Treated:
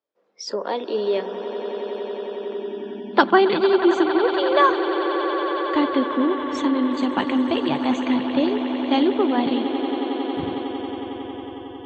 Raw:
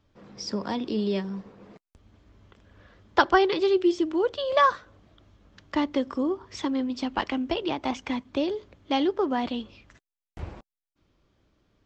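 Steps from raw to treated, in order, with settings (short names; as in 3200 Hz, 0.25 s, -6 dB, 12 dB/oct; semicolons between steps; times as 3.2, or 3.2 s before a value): swelling echo 91 ms, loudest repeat 8, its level -13.5 dB; spectral noise reduction 22 dB; high-pass sweep 480 Hz -> 150 Hz, 2.35–3.74; gain +3 dB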